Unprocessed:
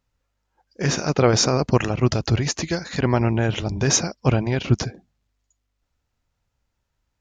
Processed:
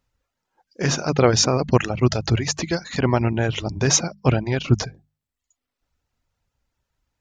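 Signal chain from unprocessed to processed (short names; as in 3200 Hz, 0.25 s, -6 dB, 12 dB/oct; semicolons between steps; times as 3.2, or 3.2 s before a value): reverb removal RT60 0.65 s; notches 50/100/150/200 Hz; gain +1.5 dB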